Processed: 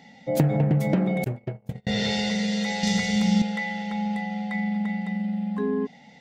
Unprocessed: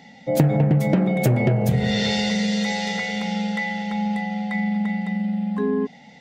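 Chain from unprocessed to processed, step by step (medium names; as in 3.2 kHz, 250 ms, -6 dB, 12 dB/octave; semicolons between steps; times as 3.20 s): 1.24–1.87 s: gate -15 dBFS, range -42 dB; 2.83–3.42 s: tone controls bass +14 dB, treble +11 dB; trim -3.5 dB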